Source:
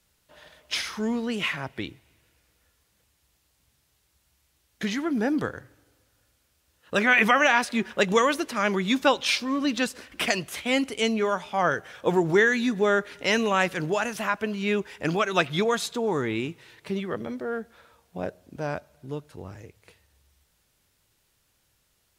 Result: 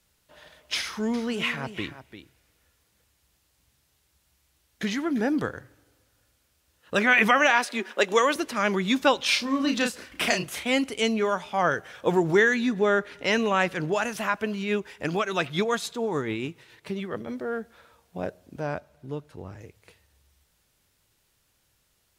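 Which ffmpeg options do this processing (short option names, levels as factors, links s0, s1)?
-filter_complex "[0:a]asettb=1/sr,asplit=3[s0][s1][s2];[s0]atrim=end=0.794[s3];[s1]atrim=start=0.79:end=5.21,asetpts=PTS-STARTPTS,afade=t=in:d=0.004:c=qsin,afade=t=out:st=4.416:d=0.004:c=qsin,aecho=1:1:346:0.251,atrim=end_sample=194922[s4];[s2]atrim=start=5.206[s5];[s3][s4]acrossfade=d=0.004:c1=hsin:c2=qsin[s6];[s6][s5]acrossfade=d=0.004:c1=qsin:c2=hsin,asettb=1/sr,asplit=3[s7][s8][s9];[s7]atrim=end=7.504[s10];[s8]atrim=start=7.5:end=8.36,asetpts=PTS-STARTPTS,afade=t=in:d=0.004:c=qsin,afade=t=out:st=0.856:d=0.004:c=qsin,highpass=f=270:w=0.5412,highpass=f=270:w=1.3066[s11];[s9]atrim=start=8.356[s12];[s10][s11]acrossfade=d=0.004:c1=hsin:c2=qsin[s13];[s13][s12]acrossfade=d=0.004:c1=qsin:c2=hsin,asettb=1/sr,asplit=3[s14][s15][s16];[s14]atrim=end=9.284[s17];[s15]atrim=start=9.28:end=10.65,asetpts=PTS-STARTPTS,afade=t=in:d=0.004:c=qsin,afade=t=out:st=1.366:d=0.004:c=qsin,asplit=2[s18][s19];[s19]adelay=33,volume=0.562[s20];[s18][s20]amix=inputs=2:normalize=0,atrim=end_sample=60417[s21];[s16]atrim=start=10.646[s22];[s17][s21]acrossfade=d=0.004:c1=hsin:c2=qsin[s23];[s23][s22]acrossfade=d=0.004:c1=qsin:c2=hsin,asettb=1/sr,asplit=3[s24][s25][s26];[s24]atrim=end=12.544[s27];[s25]atrim=start=12.54:end=13.96,asetpts=PTS-STARTPTS,afade=t=in:d=0.004:c=qsin,afade=t=out:st=1.416:d=0.004:c=qsin,highshelf=f=5600:g=-7[s28];[s26]atrim=start=13.956[s29];[s27][s28]acrossfade=d=0.004:c1=hsin:c2=qsin[s30];[s30][s29]acrossfade=d=0.004:c1=qsin:c2=hsin,asettb=1/sr,asplit=3[s31][s32][s33];[s31]atrim=end=14.604[s34];[s32]atrim=start=14.6:end=17.28,asetpts=PTS-STARTPTS,afade=t=in:d=0.004:c=qsin,afade=t=out:st=2.676:d=0.004:c=qsin,tremolo=f=7:d=0.41[s35];[s33]atrim=start=17.276[s36];[s34][s35]acrossfade=d=0.004:c1=hsin:c2=qsin[s37];[s37][s36]acrossfade=d=0.004:c1=qsin:c2=hsin,asettb=1/sr,asplit=3[s38][s39][s40];[s38]atrim=end=18.614[s41];[s39]atrim=start=18.61:end=19.61,asetpts=PTS-STARTPTS,afade=t=in:d=0.004:c=qsin,afade=t=out:st=0.996:d=0.004:c=qsin,highshelf=f=4100:g=-6[s42];[s40]atrim=start=19.606[s43];[s41][s42]acrossfade=d=0.004:c1=hsin:c2=qsin[s44];[s44][s43]acrossfade=d=0.004:c1=qsin:c2=hsin"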